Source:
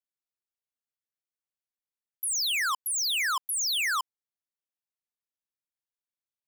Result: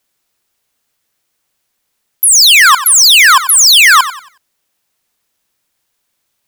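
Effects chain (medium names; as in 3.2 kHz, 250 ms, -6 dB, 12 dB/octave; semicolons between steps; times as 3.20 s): loudness maximiser +31 dB; bit-crushed delay 92 ms, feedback 35%, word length 6-bit, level -13 dB; trim -3.5 dB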